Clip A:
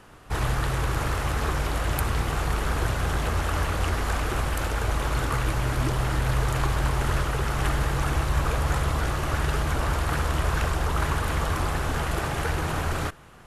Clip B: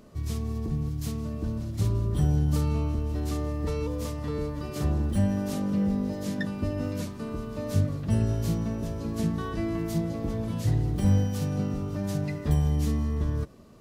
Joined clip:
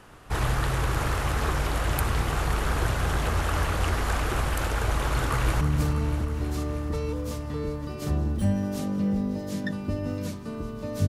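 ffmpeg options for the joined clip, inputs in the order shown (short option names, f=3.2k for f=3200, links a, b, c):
-filter_complex "[0:a]apad=whole_dur=11.08,atrim=end=11.08,atrim=end=5.612[a];[1:a]atrim=start=2.348:end=7.82[b];[a][b]acrossfade=d=0.004:c1=hsin:c2=hsin,asplit=2[c][d];[d]afade=t=in:st=5.08:d=0.01,afade=t=out:st=5.61:d=0.01,aecho=0:1:320|640|960|1280|1600|1920|2240|2560|2880|3200|3520:0.354813|0.248369|0.173859|0.121701|0.0851907|0.0596335|0.0417434|0.0292204|0.0204543|0.014318|0.0100226[e];[c][e]amix=inputs=2:normalize=0"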